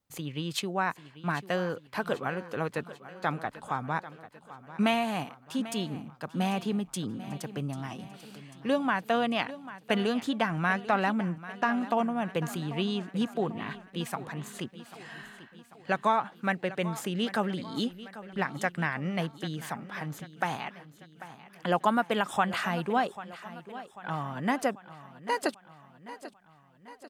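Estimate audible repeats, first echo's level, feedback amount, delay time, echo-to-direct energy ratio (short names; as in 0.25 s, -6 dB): 4, -15.5 dB, 53%, 0.792 s, -14.0 dB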